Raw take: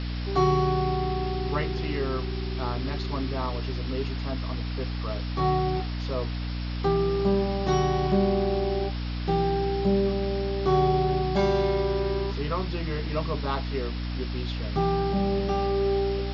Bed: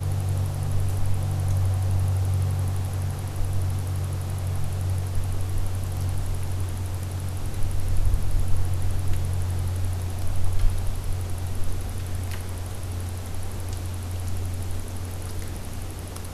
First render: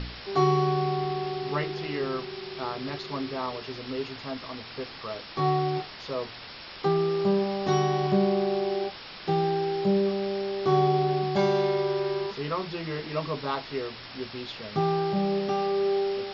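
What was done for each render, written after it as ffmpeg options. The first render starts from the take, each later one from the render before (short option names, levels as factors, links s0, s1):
-af "bandreject=f=60:t=h:w=4,bandreject=f=120:t=h:w=4,bandreject=f=180:t=h:w=4,bandreject=f=240:t=h:w=4,bandreject=f=300:t=h:w=4"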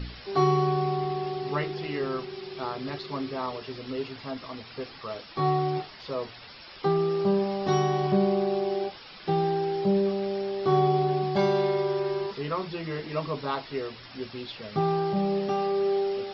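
-af "afftdn=nr=9:nf=-43"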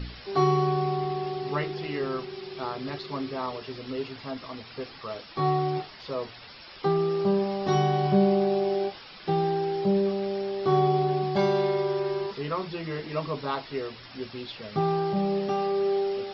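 -filter_complex "[0:a]asettb=1/sr,asplit=3[s0][s1][s2];[s0]atrim=end=7.734[s3];[s1]atrim=start=7.73:end=9.05,asetpts=PTS-STARTPTS,afade=t=in:d=0.004:c=qsin,afade=t=out:st=1.316:d=0.004:c=qsin,asplit=2[s4][s5];[s5]adelay=20,volume=0.447[s6];[s4][s6]amix=inputs=2:normalize=0,atrim=end_sample=58212[s7];[s2]atrim=start=9.046[s8];[s3][s7]acrossfade=d=0.004:c1=hsin:c2=qsin[s9];[s9][s8]acrossfade=d=0.004:c1=qsin:c2=hsin"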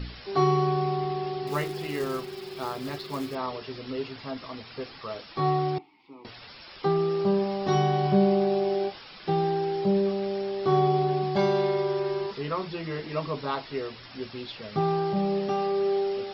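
-filter_complex "[0:a]asettb=1/sr,asplit=3[s0][s1][s2];[s0]atrim=end=1.474[s3];[s1]atrim=start=1.47:end=3.35,asetpts=PTS-STARTPTS,afade=t=in:d=0.004:c=qsin,afade=t=out:st=1.876:d=0.004:c=qsin,acrusher=bits=4:mode=log:mix=0:aa=0.000001[s4];[s2]atrim=start=3.346[s5];[s3][s4]acrossfade=d=0.004:c1=hsin:c2=qsin[s6];[s6][s5]acrossfade=d=0.004:c1=qsin:c2=hsin,asettb=1/sr,asplit=3[s7][s8][s9];[s7]atrim=end=5.784[s10];[s8]atrim=start=5.78:end=6.25,asetpts=PTS-STARTPTS,afade=t=in:d=0.004:c=qsin,afade=t=out:st=0.466:d=0.004:c=qsin,asplit=3[s11][s12][s13];[s11]bandpass=f=300:t=q:w=8,volume=1[s14];[s12]bandpass=f=870:t=q:w=8,volume=0.501[s15];[s13]bandpass=f=2240:t=q:w=8,volume=0.355[s16];[s14][s15][s16]amix=inputs=3:normalize=0[s17];[s9]atrim=start=6.246[s18];[s10][s17]acrossfade=d=0.004:c1=hsin:c2=qsin[s19];[s19][s18]acrossfade=d=0.004:c1=qsin:c2=hsin"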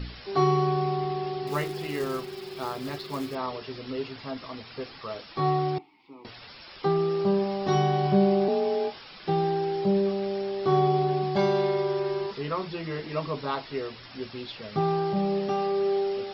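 -filter_complex "[0:a]asettb=1/sr,asplit=3[s0][s1][s2];[s0]atrim=end=8.484[s3];[s1]atrim=start=8.48:end=8.96,asetpts=PTS-STARTPTS,afade=t=in:d=0.004:c=qsin,afade=t=out:st=0.476:d=0.004:c=qsin,afreqshift=37[s4];[s2]atrim=start=8.956[s5];[s3][s4]acrossfade=d=0.004:c1=hsin:c2=qsin[s6];[s6][s5]acrossfade=d=0.004:c1=qsin:c2=hsin"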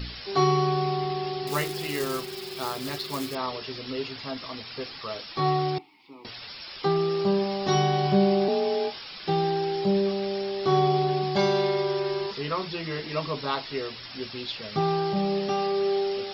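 -af "highshelf=f=2800:g=10.5"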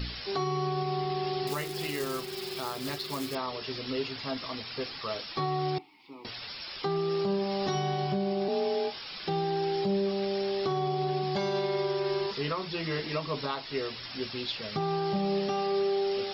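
-af "alimiter=limit=0.0891:level=0:latency=1:release=277"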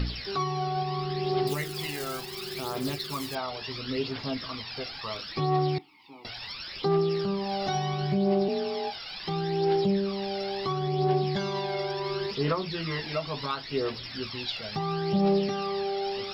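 -af "aphaser=in_gain=1:out_gain=1:delay=1.5:decay=0.54:speed=0.72:type=triangular"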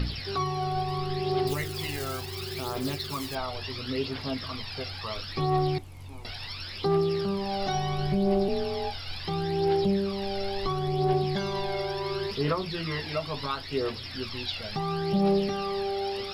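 -filter_complex "[1:a]volume=0.133[s0];[0:a][s0]amix=inputs=2:normalize=0"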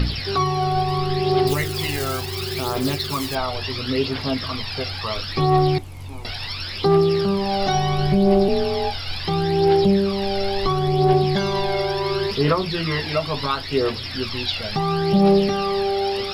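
-af "volume=2.66"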